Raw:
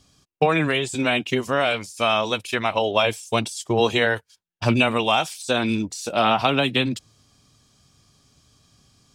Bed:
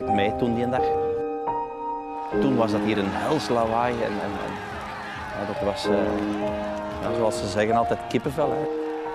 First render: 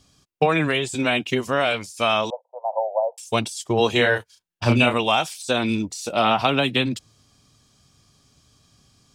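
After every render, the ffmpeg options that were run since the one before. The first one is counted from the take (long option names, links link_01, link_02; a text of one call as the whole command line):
ffmpeg -i in.wav -filter_complex "[0:a]asettb=1/sr,asplit=3[link_01][link_02][link_03];[link_01]atrim=end=2.304[link_04];[link_02]atrim=start=2.3:end=3.18,asetpts=PTS-STARTPTS,afade=type=in:duration=0.004:curve=qsin,afade=type=out:start_time=0.876:duration=0.004:curve=qsin,asuperpass=centerf=690:order=12:qfactor=1.6[link_05];[link_03]atrim=start=3.176[link_06];[link_04][link_05]acrossfade=duration=0.004:curve1=hsin:curve2=qsin[link_07];[link_07][link_06]acrossfade=duration=0.004:curve1=qsin:curve2=hsin,asettb=1/sr,asplit=3[link_08][link_09][link_10];[link_08]atrim=end=3.924[link_11];[link_09]atrim=start=3.92:end=4.94,asetpts=PTS-STARTPTS,afade=type=in:duration=0.004:curve=qsin,afade=type=out:start_time=1.016:duration=0.004:curve=qsin,asplit=2[link_12][link_13];[link_13]adelay=33,volume=-4.5dB[link_14];[link_12][link_14]amix=inputs=2:normalize=0,atrim=end_sample=44982[link_15];[link_10]atrim=start=4.936[link_16];[link_11][link_15]acrossfade=duration=0.004:curve1=hsin:curve2=qsin[link_17];[link_17][link_16]acrossfade=duration=0.004:curve1=qsin:curve2=hsin,asettb=1/sr,asplit=3[link_18][link_19][link_20];[link_18]atrim=end=5.544[link_21];[link_19]atrim=start=5.54:end=6.3,asetpts=PTS-STARTPTS,afade=type=in:duration=0.004:curve=qsin,afade=type=out:start_time=0.756:duration=0.004:curve=qsin,bandreject=frequency=1600:width=12[link_22];[link_20]atrim=start=6.296[link_23];[link_21][link_22]acrossfade=duration=0.004:curve1=hsin:curve2=qsin[link_24];[link_24][link_23]acrossfade=duration=0.004:curve1=qsin:curve2=hsin" out.wav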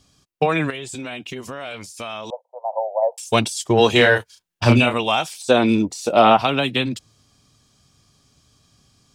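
ffmpeg -i in.wav -filter_complex "[0:a]asettb=1/sr,asplit=3[link_01][link_02][link_03];[link_01]atrim=end=0.704[link_04];[link_02]atrim=start=0.7:end=2.3,asetpts=PTS-STARTPTS,afade=type=in:duration=0.004:curve=qsin,afade=type=out:start_time=1.596:duration=0.004:curve=qsin,acompressor=threshold=-29dB:ratio=4:attack=3.2:release=140:knee=1:detection=peak[link_05];[link_03]atrim=start=2.296[link_06];[link_04][link_05]acrossfade=duration=0.004:curve1=hsin:curve2=qsin[link_07];[link_07][link_06]acrossfade=duration=0.004:curve1=qsin:curve2=hsin,asplit=3[link_08][link_09][link_10];[link_08]afade=type=out:start_time=3.01:duration=0.02[link_11];[link_09]acontrast=27,afade=type=in:start_time=3.01:duration=0.02,afade=type=out:start_time=4.79:duration=0.02[link_12];[link_10]afade=type=in:start_time=4.79:duration=0.02[link_13];[link_11][link_12][link_13]amix=inputs=3:normalize=0,asettb=1/sr,asplit=3[link_14][link_15][link_16];[link_14]atrim=end=5.334[link_17];[link_15]atrim=start=5.33:end=6.37,asetpts=PTS-STARTPTS,afade=type=in:duration=0.004:curve=qsin,afade=type=out:start_time=1.036:duration=0.004:curve=qsin,equalizer=frequency=480:width_type=o:width=3:gain=8.5[link_18];[link_16]atrim=start=6.366[link_19];[link_17][link_18]acrossfade=duration=0.004:curve1=hsin:curve2=qsin[link_20];[link_20][link_19]acrossfade=duration=0.004:curve1=qsin:curve2=hsin" out.wav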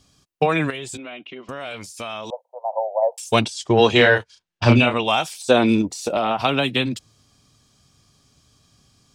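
ffmpeg -i in.wav -filter_complex "[0:a]asettb=1/sr,asplit=3[link_01][link_02][link_03];[link_01]atrim=end=0.974[link_04];[link_02]atrim=start=0.97:end=1.49,asetpts=PTS-STARTPTS,afade=type=in:duration=0.004:curve=qsin,afade=type=out:start_time=0.516:duration=0.004:curve=qsin,highpass=320,equalizer=frequency=450:width_type=q:width=4:gain=-6,equalizer=frequency=890:width_type=q:width=4:gain=-8,equalizer=frequency=1700:width_type=q:width=4:gain=-8,equalizer=frequency=2500:width_type=q:width=4:gain=-3,lowpass=frequency=3000:width=0.5412,lowpass=frequency=3000:width=1.3066[link_05];[link_03]atrim=start=1.486[link_06];[link_04][link_05]acrossfade=duration=0.004:curve1=hsin:curve2=qsin[link_07];[link_07][link_06]acrossfade=duration=0.004:curve1=qsin:curve2=hsin,asettb=1/sr,asplit=3[link_08][link_09][link_10];[link_08]atrim=end=3.414[link_11];[link_09]atrim=start=3.41:end=5.08,asetpts=PTS-STARTPTS,afade=type=in:duration=0.004:curve=qsin,afade=type=out:start_time=1.666:duration=0.004:curve=qsin,lowpass=5600[link_12];[link_10]atrim=start=5.076[link_13];[link_11][link_12]acrossfade=duration=0.004:curve1=hsin:curve2=qsin[link_14];[link_14][link_13]acrossfade=duration=0.004:curve1=qsin:curve2=hsin,asettb=1/sr,asplit=3[link_15][link_16][link_17];[link_15]atrim=end=5.814[link_18];[link_16]atrim=start=5.81:end=6.4,asetpts=PTS-STARTPTS,afade=type=in:duration=0.004:curve=qsin,afade=type=out:start_time=0.586:duration=0.004:curve=qsin,acompressor=threshold=-17dB:ratio=6:attack=3.2:release=140:knee=1:detection=peak[link_19];[link_17]atrim=start=6.396[link_20];[link_18][link_19]acrossfade=duration=0.004:curve1=hsin:curve2=qsin[link_21];[link_21][link_20]acrossfade=duration=0.004:curve1=qsin:curve2=hsin" out.wav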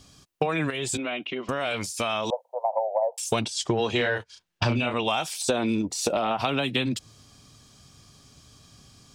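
ffmpeg -i in.wav -filter_complex "[0:a]asplit=2[link_01][link_02];[link_02]alimiter=limit=-13dB:level=0:latency=1:release=31,volume=-1.5dB[link_03];[link_01][link_03]amix=inputs=2:normalize=0,acompressor=threshold=-22dB:ratio=8" out.wav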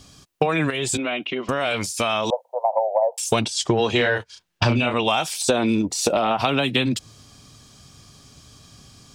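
ffmpeg -i in.wav -af "volume=5dB" out.wav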